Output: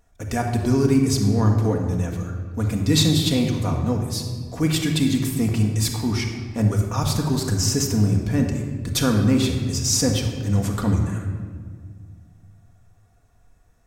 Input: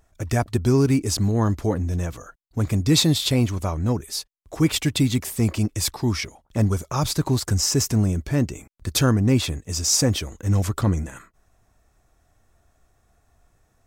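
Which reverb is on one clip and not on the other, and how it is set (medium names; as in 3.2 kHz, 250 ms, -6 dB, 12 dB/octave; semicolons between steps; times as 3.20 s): simulated room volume 2300 m³, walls mixed, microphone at 1.8 m; trim -2.5 dB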